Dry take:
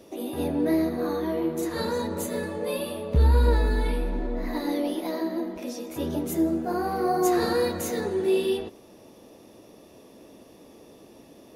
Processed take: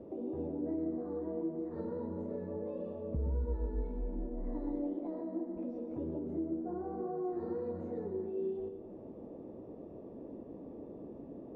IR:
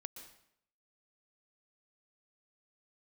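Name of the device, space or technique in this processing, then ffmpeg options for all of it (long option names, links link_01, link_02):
television next door: -filter_complex "[0:a]acompressor=threshold=-43dB:ratio=3,lowpass=570[link_01];[1:a]atrim=start_sample=2205[link_02];[link_01][link_02]afir=irnorm=-1:irlink=0,volume=8dB"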